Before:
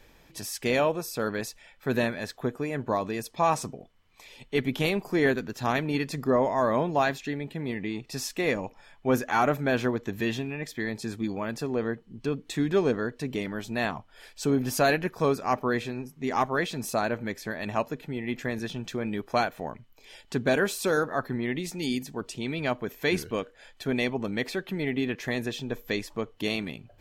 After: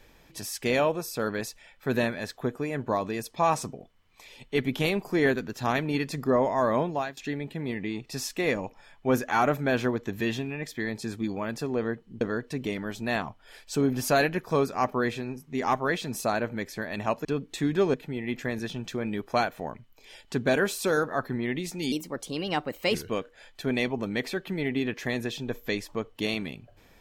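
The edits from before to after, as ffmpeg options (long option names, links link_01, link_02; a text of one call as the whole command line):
ffmpeg -i in.wav -filter_complex "[0:a]asplit=7[link_01][link_02][link_03][link_04][link_05][link_06][link_07];[link_01]atrim=end=7.17,asetpts=PTS-STARTPTS,afade=type=out:start_time=6.81:duration=0.36:silence=0.0944061[link_08];[link_02]atrim=start=7.17:end=12.212,asetpts=PTS-STARTPTS,afade=type=in:duration=0.004:curve=hsin:silence=0.0944061[link_09];[link_03]atrim=start=12.898:end=17.942[link_10];[link_04]atrim=start=12.208:end=12.902[link_11];[link_05]atrim=start=17.938:end=21.924[link_12];[link_06]atrim=start=21.92:end=23.16,asetpts=PTS-STARTPTS,asetrate=53361,aresample=44100,atrim=end_sample=45193,asetpts=PTS-STARTPTS[link_13];[link_07]atrim=start=23.156[link_14];[link_08][link_09]concat=n=2:v=0:a=1[link_15];[link_15][link_10]acrossfade=duration=0.004:curve1=hsin:curve2=hsin[link_16];[link_16][link_11]acrossfade=duration=0.004:curve1=hsin:curve2=hsin[link_17];[link_17][link_12]acrossfade=duration=0.004:curve1=hsin:curve2=hsin[link_18];[link_18][link_13]acrossfade=duration=0.004:curve1=hsin:curve2=hsin[link_19];[link_19][link_14]acrossfade=duration=0.004:curve1=hsin:curve2=hsin" out.wav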